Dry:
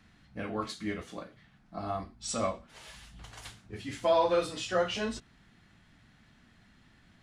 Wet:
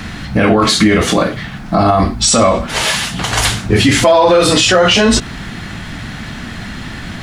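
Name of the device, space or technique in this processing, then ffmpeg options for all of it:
loud club master: -filter_complex "[0:a]acompressor=threshold=-34dB:ratio=2.5,asoftclip=type=hard:threshold=-25.5dB,alimiter=level_in=36dB:limit=-1dB:release=50:level=0:latency=1,asettb=1/sr,asplit=3[link_01][link_02][link_03];[link_01]atrim=end=2.854[link_04];[link_02]atrim=start=2.85:end=3.32,asetpts=PTS-STARTPTS,afade=type=in:duration=0.004:curve=qsin,afade=type=out:start_time=0.466:duration=0.004:curve=qsin,highpass=140[link_05];[link_03]atrim=start=3.316[link_06];[link_04][link_05]acrossfade=duration=0.004:curve1=hsin:curve2=qsin[link_07];[link_07][link_06]acrossfade=duration=0.004:curve1=qsin:curve2=hsin,volume=-1dB"

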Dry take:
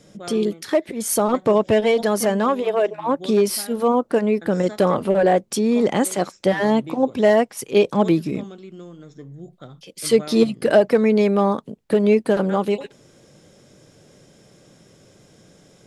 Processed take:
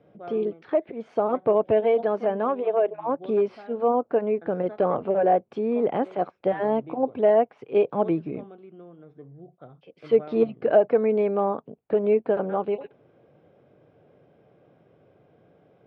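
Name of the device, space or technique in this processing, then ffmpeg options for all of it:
bass cabinet: -af "highpass=77,equalizer=frequency=200:width_type=q:width=4:gain=-5,equalizer=frequency=450:width_type=q:width=4:gain=4,equalizer=frequency=710:width_type=q:width=4:gain=7,equalizer=frequency=1900:width_type=q:width=4:gain=-7,lowpass=frequency=2400:width=0.5412,lowpass=frequency=2400:width=1.3066,volume=-7dB"

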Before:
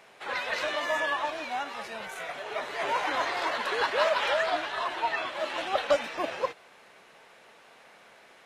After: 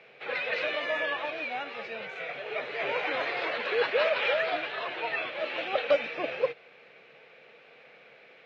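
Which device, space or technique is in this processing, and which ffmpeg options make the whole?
guitar cabinet: -af "highpass=110,equalizer=frequency=140:width_type=q:width=4:gain=8,equalizer=frequency=480:width_type=q:width=4:gain=10,equalizer=frequency=980:width_type=q:width=4:gain=-8,equalizer=frequency=2400:width_type=q:width=4:gain=9,lowpass=frequency=4300:width=0.5412,lowpass=frequency=4300:width=1.3066,volume=-2.5dB"

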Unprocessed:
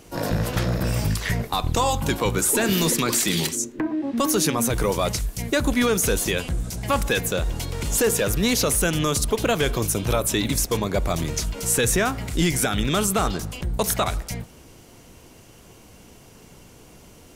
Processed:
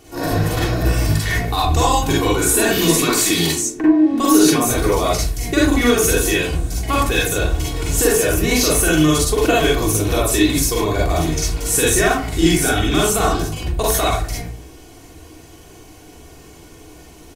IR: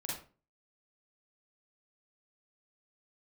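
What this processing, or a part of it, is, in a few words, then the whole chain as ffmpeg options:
microphone above a desk: -filter_complex "[0:a]asettb=1/sr,asplit=3[link_01][link_02][link_03];[link_01]atrim=end=8.124[link_04];[link_02]atrim=start=8.12:end=8.57,asetpts=PTS-STARTPTS,afade=type=in:duration=0.004:curve=qsin,afade=type=out:start_time=0.446:duration=0.004:curve=qsin,equalizer=frequency=3700:width=5.6:gain=-7[link_05];[link_03]atrim=start=8.566[link_06];[link_04][link_05]acrossfade=duration=0.004:curve1=hsin:curve2=qsin[link_07];[link_07][link_06]acrossfade=duration=0.004:curve1=qsin:curve2=hsin,aecho=1:1:2.7:0.59[link_08];[1:a]atrim=start_sample=2205[link_09];[link_08][link_09]afir=irnorm=-1:irlink=0,volume=4dB"

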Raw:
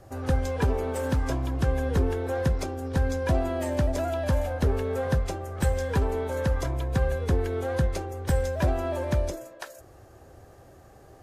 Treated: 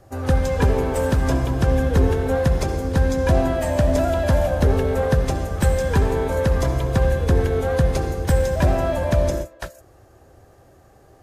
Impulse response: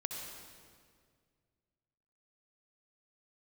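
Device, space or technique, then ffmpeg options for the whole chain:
keyed gated reverb: -filter_complex "[0:a]asplit=3[link_01][link_02][link_03];[1:a]atrim=start_sample=2205[link_04];[link_02][link_04]afir=irnorm=-1:irlink=0[link_05];[link_03]apad=whole_len=495157[link_06];[link_05][link_06]sidechaingate=range=-33dB:threshold=-38dB:ratio=16:detection=peak,volume=2dB[link_07];[link_01][link_07]amix=inputs=2:normalize=0"

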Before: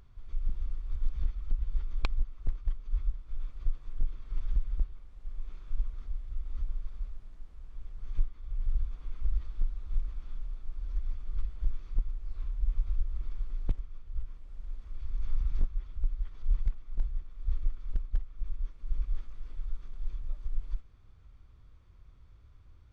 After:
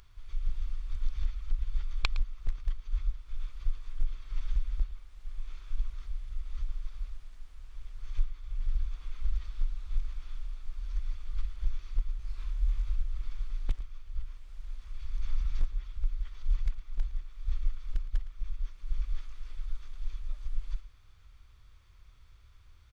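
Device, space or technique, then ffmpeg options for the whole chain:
low shelf boost with a cut just above: -filter_complex "[0:a]tiltshelf=frequency=970:gain=-9,asettb=1/sr,asplit=3[link_01][link_02][link_03];[link_01]atrim=end=12.174[link_04];[link_02]atrim=start=12.17:end=12.89,asetpts=PTS-STARTPTS,afade=type=in:duration=0.004:curve=qsin,afade=type=out:start_time=0.716:duration=0.004:curve=qsin,asplit=2[link_05][link_06];[link_06]adelay=22,volume=-3dB[link_07];[link_05][link_07]amix=inputs=2:normalize=0,atrim=end_sample=31752[link_08];[link_03]atrim=start=12.886[link_09];[link_04][link_08]acrossfade=duration=0.004:curve1=hsin:curve2=qsin[link_10];[link_10][link_09]acrossfade=duration=0.004:curve1=qsin:curve2=hsin,lowshelf=frequency=110:gain=8,equalizer=frequency=200:width_type=o:width=0.77:gain=-4,aecho=1:1:112:0.158,volume=1dB"

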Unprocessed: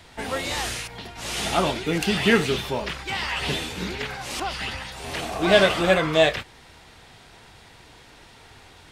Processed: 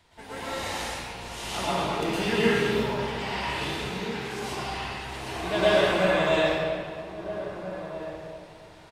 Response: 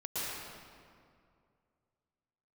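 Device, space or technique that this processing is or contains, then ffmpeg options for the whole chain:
stairwell: -filter_complex "[1:a]atrim=start_sample=2205[link_01];[0:a][link_01]afir=irnorm=-1:irlink=0,asettb=1/sr,asplit=3[link_02][link_03][link_04];[link_02]atrim=end=4.004[link_05];[link_03]atrim=start=4:end=4.52,asetpts=PTS-STARTPTS,afade=type=in:duration=0.004:curve=qsin,afade=type=out:start_time=0.516:duration=0.004:curve=qsin,highpass=frequency=230:poles=1[link_06];[link_04]atrim=start=4.516[link_07];[link_05][link_06]acrossfade=duration=0.004:curve1=hsin:curve2=qsin[link_08];[link_08][link_07]acrossfade=duration=0.004:curve1=qsin:curve2=hsin,equalizer=frequency=960:width=4.8:gain=4.5,asplit=2[link_09][link_10];[link_10]adelay=1633,volume=-11dB,highshelf=frequency=4000:gain=-36.7[link_11];[link_09][link_11]amix=inputs=2:normalize=0,volume=-8.5dB"

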